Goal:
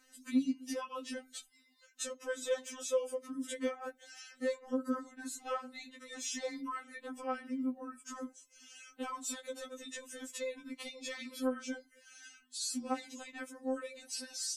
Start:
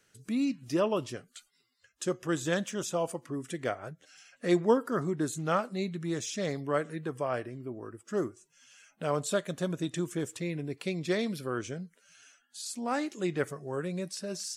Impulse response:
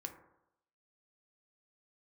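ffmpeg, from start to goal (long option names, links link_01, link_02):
-af "acompressor=threshold=-37dB:ratio=6,afftfilt=real='re*3.46*eq(mod(b,12),0)':imag='im*3.46*eq(mod(b,12),0)':win_size=2048:overlap=0.75,volume=5.5dB"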